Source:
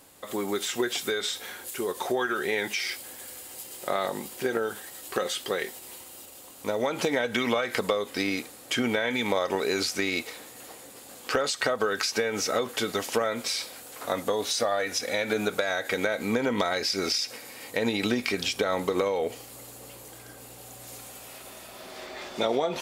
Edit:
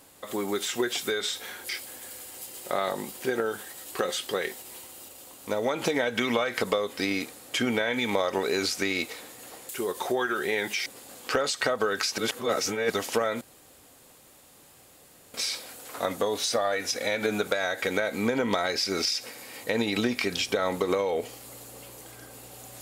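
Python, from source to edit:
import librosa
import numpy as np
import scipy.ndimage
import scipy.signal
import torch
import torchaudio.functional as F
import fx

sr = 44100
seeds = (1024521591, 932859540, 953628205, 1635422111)

y = fx.edit(x, sr, fx.move(start_s=1.69, length_s=1.17, to_s=10.86),
    fx.reverse_span(start_s=12.18, length_s=0.72),
    fx.insert_room_tone(at_s=13.41, length_s=1.93), tone=tone)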